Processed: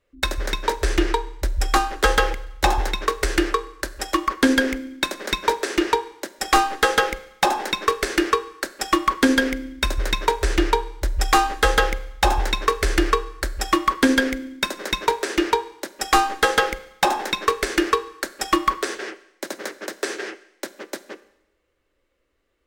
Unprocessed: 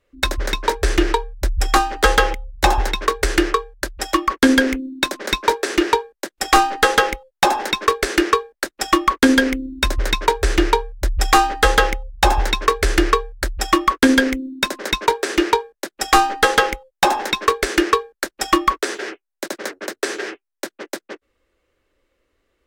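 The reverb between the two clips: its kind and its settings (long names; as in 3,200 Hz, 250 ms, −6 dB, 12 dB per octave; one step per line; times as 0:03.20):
four-comb reverb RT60 0.86 s, combs from 32 ms, DRR 15 dB
level −3.5 dB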